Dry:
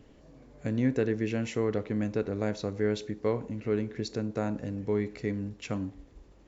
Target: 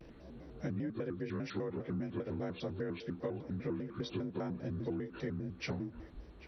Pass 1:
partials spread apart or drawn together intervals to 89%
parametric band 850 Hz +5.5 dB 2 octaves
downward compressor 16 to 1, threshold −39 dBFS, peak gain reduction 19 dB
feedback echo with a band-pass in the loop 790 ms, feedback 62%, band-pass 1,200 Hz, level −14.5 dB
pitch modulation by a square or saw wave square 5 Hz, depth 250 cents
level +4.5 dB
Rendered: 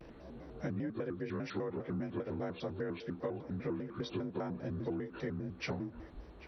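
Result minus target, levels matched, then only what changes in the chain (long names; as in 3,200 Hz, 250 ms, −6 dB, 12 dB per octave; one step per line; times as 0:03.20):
1,000 Hz band +2.5 dB
remove: parametric band 850 Hz +5.5 dB 2 octaves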